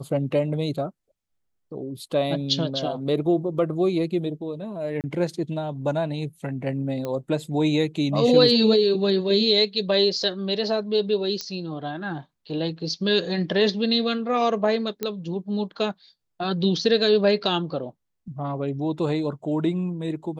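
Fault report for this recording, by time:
0:05.01–0:05.04: drop-out 28 ms
0:07.05: click −17 dBFS
0:11.41: click −15 dBFS
0:15.03: click −12 dBFS

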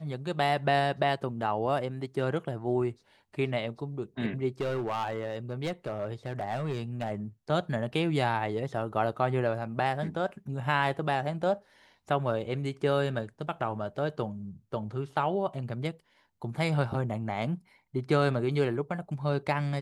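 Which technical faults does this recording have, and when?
0:04.61–0:07.11: clipping −26.5 dBFS

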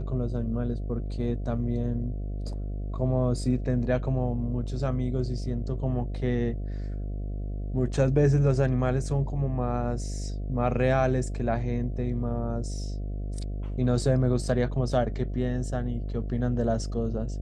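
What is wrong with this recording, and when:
mains buzz 50 Hz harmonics 14 −32 dBFS

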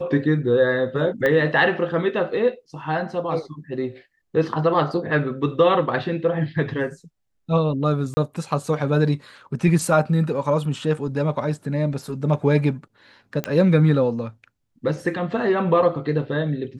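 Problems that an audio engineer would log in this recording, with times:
0:01.26: click −11 dBFS
0:08.14–0:08.17: drop-out 30 ms
0:13.44: click −11 dBFS

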